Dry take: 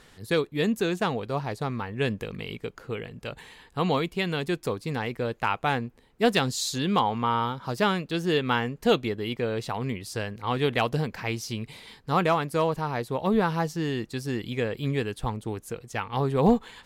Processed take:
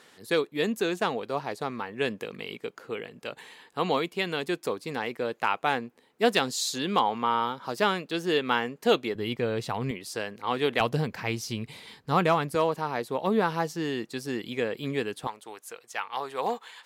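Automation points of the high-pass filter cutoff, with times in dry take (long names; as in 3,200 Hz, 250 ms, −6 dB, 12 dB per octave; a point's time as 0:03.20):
260 Hz
from 0:09.15 84 Hz
from 0:09.91 250 Hz
from 0:10.80 91 Hz
from 0:12.55 220 Hz
from 0:15.27 740 Hz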